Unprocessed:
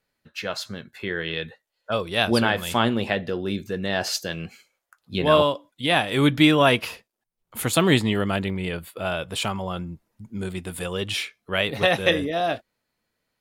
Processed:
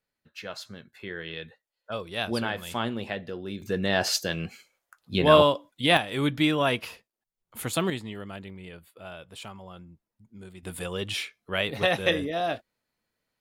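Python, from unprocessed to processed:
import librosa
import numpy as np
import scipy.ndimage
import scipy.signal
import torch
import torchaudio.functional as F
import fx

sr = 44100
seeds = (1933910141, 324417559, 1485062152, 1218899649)

y = fx.gain(x, sr, db=fx.steps((0.0, -8.5), (3.62, 0.5), (5.97, -7.0), (7.9, -15.0), (10.63, -4.0)))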